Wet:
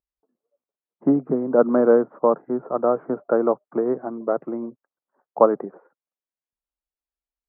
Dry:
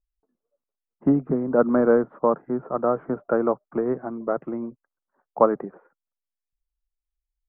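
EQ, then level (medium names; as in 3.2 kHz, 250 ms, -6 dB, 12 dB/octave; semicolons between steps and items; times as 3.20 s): band-pass filter 530 Hz, Q 0.56; +3.0 dB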